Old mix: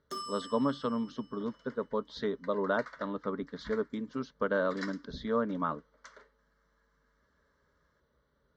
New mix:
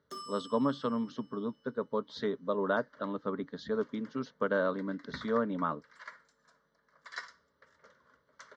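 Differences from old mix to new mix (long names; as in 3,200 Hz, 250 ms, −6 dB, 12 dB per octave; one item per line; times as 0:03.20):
first sound −4.5 dB
second sound: entry +2.35 s
master: add high-pass filter 83 Hz 24 dB per octave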